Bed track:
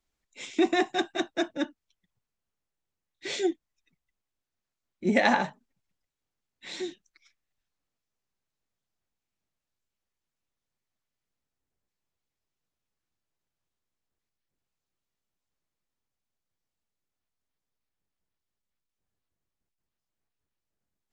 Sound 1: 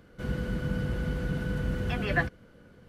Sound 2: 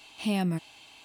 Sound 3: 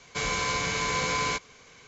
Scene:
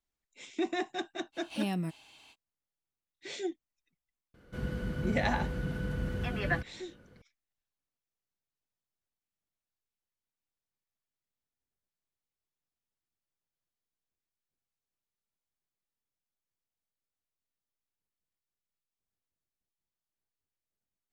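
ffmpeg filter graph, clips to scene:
-filter_complex "[0:a]volume=0.376[s0];[2:a]atrim=end=1.04,asetpts=PTS-STARTPTS,volume=0.531,afade=t=in:d=0.05,afade=t=out:st=0.99:d=0.05,adelay=1320[s1];[1:a]atrim=end=2.88,asetpts=PTS-STARTPTS,volume=0.631,afade=t=in:d=0.004:c=hsin,afade=t=out:st=2.876:d=0.004:c=hsin,adelay=4340[s2];[s0][s1][s2]amix=inputs=3:normalize=0"

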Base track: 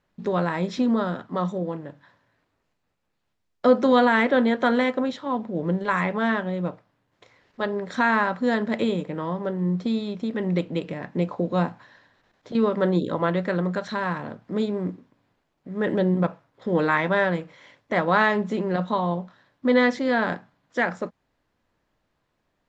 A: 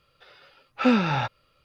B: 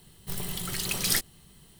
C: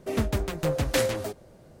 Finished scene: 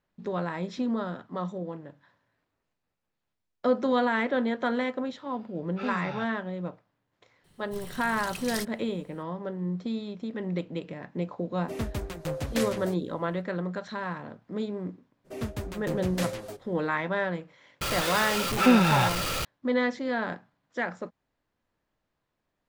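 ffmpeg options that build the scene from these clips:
-filter_complex "[1:a]asplit=2[s0][s1];[3:a]asplit=2[s2][s3];[0:a]volume=0.447[s4];[2:a]highshelf=f=11000:g=-9.5[s5];[s3]flanger=delay=4.7:depth=5.2:regen=-48:speed=1.7:shape=triangular[s6];[s1]aeval=exprs='val(0)+0.5*0.0708*sgn(val(0))':c=same[s7];[s0]atrim=end=1.64,asetpts=PTS-STARTPTS,volume=0.211,afade=t=in:d=0.004:c=hsin,afade=t=out:st=1.636:d=0.004:c=hsin,adelay=4980[s8];[s5]atrim=end=1.79,asetpts=PTS-STARTPTS,volume=0.398,afade=t=in:d=0.004:c=hsin,afade=t=out:st=1.786:d=0.004:c=hsin,adelay=7440[s9];[s2]atrim=end=1.8,asetpts=PTS-STARTPTS,volume=0.501,afade=t=in:d=0.004:c=hsin,afade=t=out:st=1.796:d=0.004:c=hsin,adelay=512442S[s10];[s6]atrim=end=1.8,asetpts=PTS-STARTPTS,volume=0.668,afade=t=in:d=0.02,afade=t=out:st=1.78:d=0.02,adelay=672084S[s11];[s7]atrim=end=1.64,asetpts=PTS-STARTPTS,volume=0.891,afade=t=in:d=0.004:c=hsin,afade=t=out:st=1.636:d=0.004:c=hsin,adelay=17810[s12];[s4][s8][s9][s10][s11][s12]amix=inputs=6:normalize=0"

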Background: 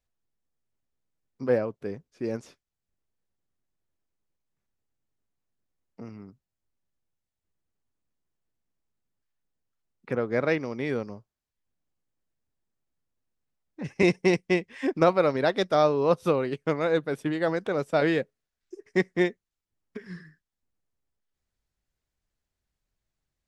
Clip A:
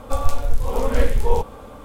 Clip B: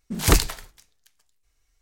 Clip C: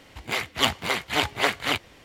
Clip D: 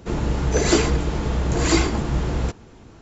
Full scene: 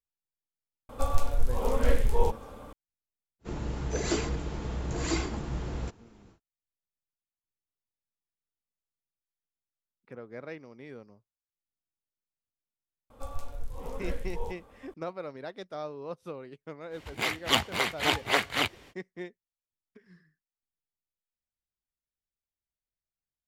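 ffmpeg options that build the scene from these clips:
-filter_complex "[1:a]asplit=2[s0][s1];[0:a]volume=0.15[s2];[s0]atrim=end=1.84,asetpts=PTS-STARTPTS,volume=0.501,afade=t=in:d=0.004:c=hsin,afade=t=out:st=1.836:d=0.004:c=hsin,adelay=890[s3];[4:a]atrim=end=3.01,asetpts=PTS-STARTPTS,volume=0.266,afade=t=in:d=0.1,afade=t=out:st=2.91:d=0.1,adelay=3390[s4];[s1]atrim=end=1.84,asetpts=PTS-STARTPTS,volume=0.141,afade=t=in:d=0.004:c=hsin,afade=t=out:st=1.836:d=0.004:c=hsin,adelay=13100[s5];[3:a]atrim=end=2.04,asetpts=PTS-STARTPTS,volume=0.75,afade=t=in:d=0.05,afade=t=out:st=1.99:d=0.05,adelay=16900[s6];[s2][s3][s4][s5][s6]amix=inputs=5:normalize=0"

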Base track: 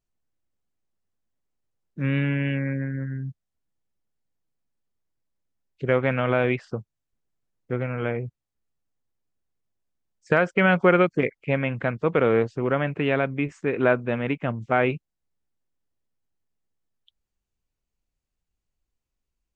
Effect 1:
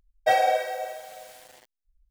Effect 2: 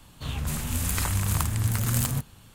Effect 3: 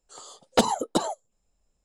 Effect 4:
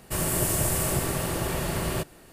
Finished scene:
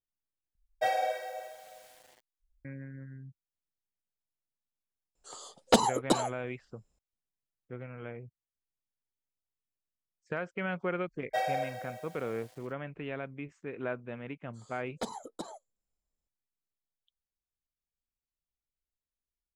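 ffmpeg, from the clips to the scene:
-filter_complex "[1:a]asplit=2[s0][s1];[3:a]asplit=2[s2][s3];[0:a]volume=0.168[s4];[s3]asuperstop=centerf=2800:order=4:qfactor=5.6[s5];[s4]asplit=2[s6][s7];[s6]atrim=end=0.554[s8];[s0]atrim=end=2.1,asetpts=PTS-STARTPTS,volume=0.376[s9];[s7]atrim=start=2.646[s10];[s2]atrim=end=1.84,asetpts=PTS-STARTPTS,volume=0.794,afade=t=in:d=0.004:c=hsin,afade=t=out:st=1.836:d=0.004:c=hsin,adelay=5150[s11];[s1]atrim=end=2.1,asetpts=PTS-STARTPTS,volume=0.299,afade=t=in:d=0.004:c=hsin,afade=t=out:st=2.096:d=0.004:c=hsin,adelay=11070[s12];[s5]atrim=end=1.84,asetpts=PTS-STARTPTS,volume=0.15,afade=t=in:d=0.004:c=hsin,afade=t=out:st=1.836:d=0.004:c=hsin,adelay=636804S[s13];[s8][s9]acrossfade=d=0.004:c1=hsin:c2=hsin[s14];[s14][s10]acrossfade=d=0.004:c1=hsin:c2=hsin[s15];[s15][s11][s12][s13]amix=inputs=4:normalize=0"

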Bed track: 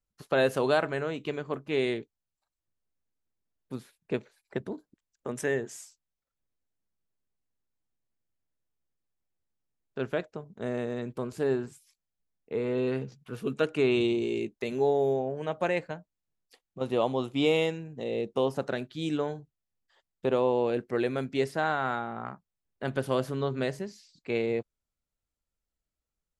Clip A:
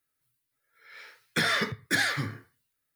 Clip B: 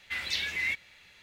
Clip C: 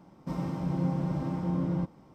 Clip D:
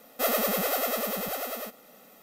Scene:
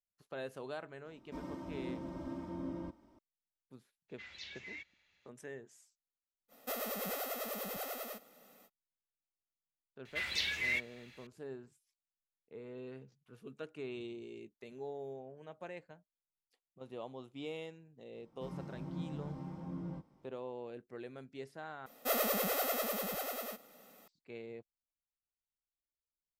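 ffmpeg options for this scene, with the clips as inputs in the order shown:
-filter_complex "[3:a]asplit=2[s0][s1];[2:a]asplit=2[s2][s3];[4:a]asplit=2[s4][s5];[0:a]volume=0.119[s6];[s0]aecho=1:1:3.2:0.91[s7];[s2]aresample=16000,aresample=44100[s8];[s4]alimiter=limit=0.119:level=0:latency=1:release=326[s9];[s1]flanger=delay=18:depth=3.8:speed=1.2[s10];[s6]asplit=2[s11][s12];[s11]atrim=end=21.864[s13];[s5]atrim=end=2.22,asetpts=PTS-STARTPTS,volume=0.473[s14];[s12]atrim=start=24.076[s15];[s7]atrim=end=2.14,asetpts=PTS-STARTPTS,volume=0.282,afade=t=in:d=0.004:c=hsin,afade=t=out:st=2.136:d=0.004:c=hsin,adelay=1050[s16];[s8]atrim=end=1.22,asetpts=PTS-STARTPTS,volume=0.133,afade=t=in:d=0.02,afade=t=out:st=1.2:d=0.02,adelay=4080[s17];[s9]atrim=end=2.22,asetpts=PTS-STARTPTS,volume=0.376,afade=t=in:d=0.05,afade=t=out:st=2.17:d=0.05,adelay=6480[s18];[s3]atrim=end=1.22,asetpts=PTS-STARTPTS,volume=0.668,afade=t=in:d=0.004:c=hsin,afade=t=out:st=1.216:d=0.004:c=hsin,adelay=10050[s19];[s10]atrim=end=2.14,asetpts=PTS-STARTPTS,volume=0.316,afade=t=in:d=0.004:c=hsin,afade=t=out:st=2.136:d=0.004:c=hsin,adelay=18140[s20];[s13][s14]acrossfade=d=0.004:c1=hsin:c2=hsin[s21];[s21][s15]acrossfade=d=0.004:c1=hsin:c2=hsin[s22];[s22][s16][s17][s18][s19][s20]amix=inputs=6:normalize=0"

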